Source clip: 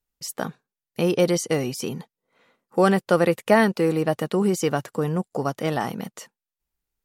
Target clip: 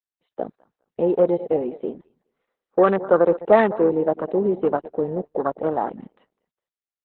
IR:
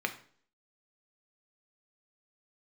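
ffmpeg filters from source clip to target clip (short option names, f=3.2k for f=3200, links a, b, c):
-filter_complex "[0:a]highpass=340,lowpass=5k,highshelf=f=2.1k:g=-11.5,asplit=2[a][b];[b]adelay=205,lowpass=f=1.8k:p=1,volume=-15.5dB,asplit=2[c][d];[d]adelay=205,lowpass=f=1.8k:p=1,volume=0.23[e];[a][c][e]amix=inputs=3:normalize=0,afwtdn=0.0398,asettb=1/sr,asplit=3[f][g][h];[f]atrim=end=1.384[i];[g]atrim=start=1.38:end=2.98,asetpts=PTS-STARTPTS,afade=t=in:d=0.004:c=qsin,afade=t=out:st=1.596:d=0.004:c=qsin,bandreject=f=890:w=12[j];[h]atrim=start=2.976[k];[i][j]acrossfade=d=0.004:c1=hsin:c2=qsin[l];[l][k]acrossfade=d=0.004:c1=qsin:c2=hsin,asettb=1/sr,asplit=3[m][n][o];[m]atrim=end=5.224[p];[n]atrim=start=5.22:end=6.01,asetpts=PTS-STARTPTS,afade=t=in:d=0.004:c=qsin,afade=t=out:st=0.786:d=0.004:c=qsin,agate=range=-10dB:threshold=-51dB:ratio=16:detection=peak[q];[o]atrim=start=6.006[r];[p][q]acrossfade=d=0.004:c1=hsin:c2=qsin[s];[s][r]acrossfade=d=0.004:c1=qsin:c2=hsin,volume=5.5dB" -ar 48000 -c:a libopus -b:a 8k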